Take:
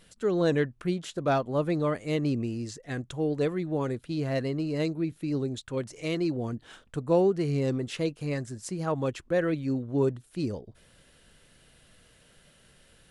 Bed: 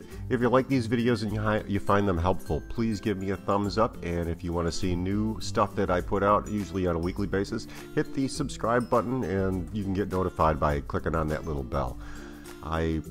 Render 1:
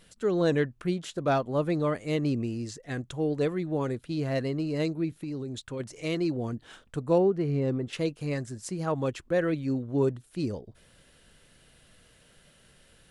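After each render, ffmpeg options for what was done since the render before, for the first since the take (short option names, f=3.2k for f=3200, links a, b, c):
-filter_complex "[0:a]asplit=3[a][b][c];[a]afade=t=out:st=5.17:d=0.02[d];[b]acompressor=threshold=-31dB:ratio=6:attack=3.2:release=140:knee=1:detection=peak,afade=t=in:st=5.17:d=0.02,afade=t=out:st=5.79:d=0.02[e];[c]afade=t=in:st=5.79:d=0.02[f];[d][e][f]amix=inputs=3:normalize=0,asettb=1/sr,asplit=3[g][h][i];[g]atrim=end=7.184[j];[h]atrim=start=7.18:end=7.93,asetpts=PTS-STARTPTS,afade=t=in:d=0.004:c=qsin,afade=t=out:st=0.746:d=0.004:c=qsin,equalizer=f=8.4k:t=o:w=2.5:g=-13.5[k];[i]atrim=start=7.926[l];[j][k]acrossfade=d=0.004:c1=hsin:c2=qsin[m];[m][l]acrossfade=d=0.004:c1=qsin:c2=hsin"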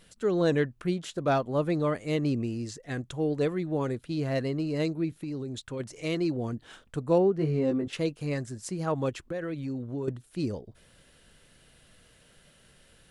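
-filter_complex "[0:a]asettb=1/sr,asplit=3[a][b][c];[a]atrim=end=7.374[d];[b]atrim=start=7.37:end=7.88,asetpts=PTS-STARTPTS,afade=t=in:d=0.004:c=qsin,afade=t=out:st=0.506:d=0.004:c=qsin,asplit=2[e][f];[f]adelay=19,volume=-4dB[g];[e][g]amix=inputs=2:normalize=0,atrim=end_sample=22491[h];[c]atrim=start=7.876[i];[d][h]acrossfade=d=0.004:c1=hsin:c2=qsin[j];[j][i]acrossfade=d=0.004:c1=qsin:c2=hsin,asettb=1/sr,asplit=3[k][l][m];[k]atrim=end=9.094[n];[l]atrim=start=9.09:end=10.08,asetpts=PTS-STARTPTS,afade=t=in:d=0.004:c=qsin,afade=t=out:st=0.986:d=0.004:c=qsin,acompressor=threshold=-30dB:ratio=6:attack=3.2:release=140:knee=1:detection=peak[o];[m]atrim=start=10.076[p];[n][o]acrossfade=d=0.004:c1=hsin:c2=qsin[q];[q][p]acrossfade=d=0.004:c1=qsin:c2=hsin"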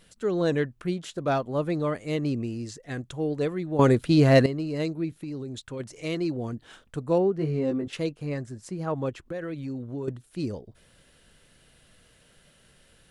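-filter_complex "[0:a]asettb=1/sr,asplit=3[a][b][c];[a]atrim=end=8.094[d];[b]atrim=start=8.09:end=9.26,asetpts=PTS-STARTPTS,afade=t=in:d=0.004:c=qsin,afade=t=out:st=1.166:d=0.004:c=qsin,highshelf=f=2.9k:g=-7.5[e];[c]atrim=start=9.256[f];[d][e]acrossfade=d=0.004:c1=hsin:c2=qsin[g];[g][f]acrossfade=d=0.004:c1=qsin:c2=hsin,asplit=3[h][i][j];[h]atrim=end=3.792[k];[i]atrim=start=3.788:end=4.462,asetpts=PTS-STARTPTS,volume=12dB[l];[j]atrim=start=4.458[m];[k][l]acrossfade=d=0.004:c1=hsin:c2=hsin[n];[n][m]acrossfade=d=0.004:c1=hsin:c2=hsin"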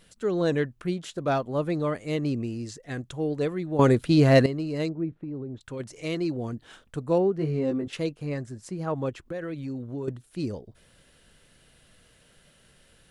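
-filter_complex "[0:a]asettb=1/sr,asplit=3[a][b][c];[a]atrim=end=4.894[d];[b]atrim=start=4.89:end=5.61,asetpts=PTS-STARTPTS,afade=t=in:d=0.004:c=qsin,afade=t=out:st=0.716:d=0.004:c=qsin,lowpass=1.2k[e];[c]atrim=start=5.606[f];[d][e]acrossfade=d=0.004:c1=hsin:c2=qsin[g];[g][f]acrossfade=d=0.004:c1=qsin:c2=hsin"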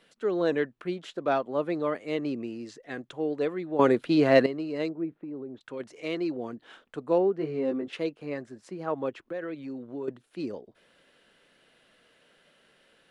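-filter_complex "[0:a]acrossover=split=220 4100:gain=0.0794 1 0.224[a][b][c];[a][b][c]amix=inputs=3:normalize=0"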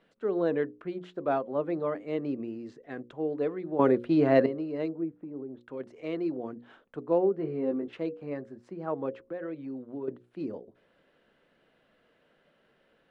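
-af "lowpass=f=1k:p=1,bandreject=f=60:t=h:w=6,bandreject=f=120:t=h:w=6,bandreject=f=180:t=h:w=6,bandreject=f=240:t=h:w=6,bandreject=f=300:t=h:w=6,bandreject=f=360:t=h:w=6,bandreject=f=420:t=h:w=6,bandreject=f=480:t=h:w=6,bandreject=f=540:t=h:w=6"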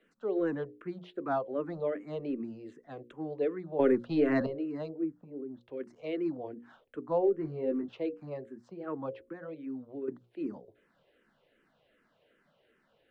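-filter_complex "[0:a]acrossover=split=240|600[a][b][c];[a]aeval=exprs='clip(val(0),-1,0.0126)':c=same[d];[d][b][c]amix=inputs=3:normalize=0,asplit=2[e][f];[f]afreqshift=-2.6[g];[e][g]amix=inputs=2:normalize=1"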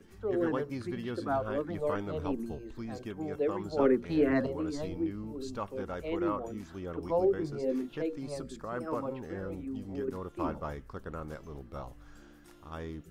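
-filter_complex "[1:a]volume=-13dB[a];[0:a][a]amix=inputs=2:normalize=0"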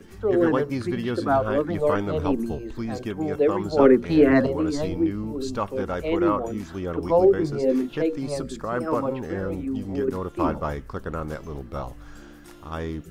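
-af "volume=10dB"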